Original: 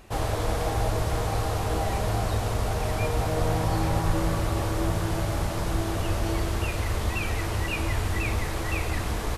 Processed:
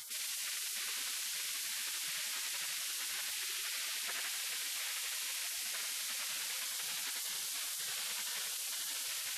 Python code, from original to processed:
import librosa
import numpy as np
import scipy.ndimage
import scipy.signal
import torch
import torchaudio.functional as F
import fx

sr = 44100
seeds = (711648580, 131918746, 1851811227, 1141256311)

p1 = fx.dynamic_eq(x, sr, hz=260.0, q=1.8, threshold_db=-46.0, ratio=4.0, max_db=7)
p2 = fx.spec_gate(p1, sr, threshold_db=-30, keep='weak')
p3 = p2 + fx.echo_single(p2, sr, ms=92, db=-4.5, dry=0)
y = fx.env_flatten(p3, sr, amount_pct=70)